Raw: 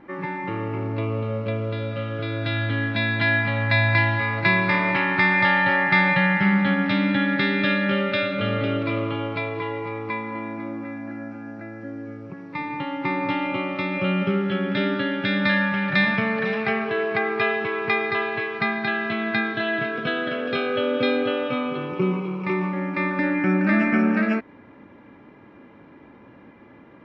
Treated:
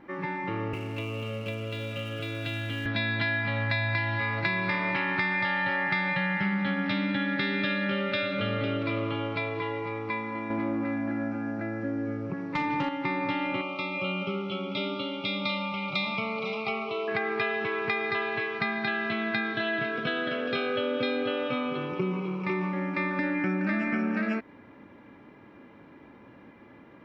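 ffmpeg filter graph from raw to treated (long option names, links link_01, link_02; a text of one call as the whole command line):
ffmpeg -i in.wav -filter_complex "[0:a]asettb=1/sr,asplit=3[link_01][link_02][link_03];[link_01]atrim=end=0.734[link_04];[link_02]atrim=start=0.73:end=2.86,asetpts=PTS-STARTPTS,afade=type=in:duration=0.004:curve=qsin,afade=type=out:start_time=2.126:duration=0.004:curve=qsin,equalizer=frequency=2800:width=3.6:gain=13.5,acrossover=split=110|650|1500[link_05][link_06][link_07][link_08];[link_05]acompressor=threshold=-40dB:ratio=3[link_09];[link_06]acompressor=threshold=-31dB:ratio=3[link_10];[link_07]acompressor=threshold=-45dB:ratio=3[link_11];[link_08]acompressor=threshold=-37dB:ratio=3[link_12];[link_09][link_10][link_11][link_12]amix=inputs=4:normalize=0,aeval=exprs='sgn(val(0))*max(abs(val(0))-0.00299,0)':channel_layout=same[link_13];[link_03]atrim=start=2.856[link_14];[link_04][link_13]acrossfade=duration=0.004:curve1=hsin:curve2=qsin[link_15];[link_15][link_14]acrossfade=duration=0.004:curve1=qsin:curve2=hsin,asettb=1/sr,asplit=3[link_16][link_17][link_18];[link_16]atrim=end=10.504[link_19];[link_17]atrim=start=10.5:end=12.89,asetpts=PTS-STARTPTS,afade=type=in:duration=0.004:curve=qsin,afade=type=out:start_time=2.386:duration=0.004:curve=qsin,highshelf=frequency=3200:gain=-9,aeval=exprs='0.133*sin(PI/2*1.58*val(0)/0.133)':channel_layout=same[link_20];[link_18]atrim=start=12.886[link_21];[link_19][link_20]acrossfade=duration=0.004:curve1=hsin:curve2=qsin[link_22];[link_22][link_21]acrossfade=duration=0.004:curve1=qsin:curve2=hsin,asettb=1/sr,asplit=3[link_23][link_24][link_25];[link_23]atrim=end=13.614[link_26];[link_24]atrim=start=13.61:end=17.08,asetpts=PTS-STARTPTS,afade=type=in:duration=0.004:curve=qsin,afade=type=out:start_time=3.466:duration=0.004:curve=qsin,asuperstop=centerf=1700:order=12:qfactor=2.2,lowshelf=frequency=390:gain=-9[link_27];[link_25]atrim=start=17.076[link_28];[link_26][link_27]acrossfade=duration=0.004:curve1=hsin:curve2=qsin[link_29];[link_29][link_28]acrossfade=duration=0.004:curve1=qsin:curve2=hsin,highshelf=frequency=4200:gain=6.5,acompressor=threshold=-21dB:ratio=6,volume=-3.5dB" out.wav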